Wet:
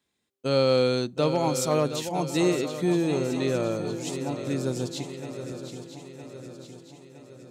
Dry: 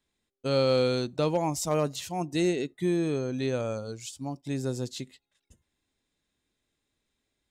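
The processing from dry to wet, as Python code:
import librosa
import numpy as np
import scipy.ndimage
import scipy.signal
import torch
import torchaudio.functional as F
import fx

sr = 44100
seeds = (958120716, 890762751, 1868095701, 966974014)

p1 = scipy.signal.sosfilt(scipy.signal.butter(2, 100.0, 'highpass', fs=sr, output='sos'), x)
p2 = p1 + fx.echo_swing(p1, sr, ms=963, ratio=3, feedback_pct=52, wet_db=-10, dry=0)
y = p2 * 10.0 ** (2.5 / 20.0)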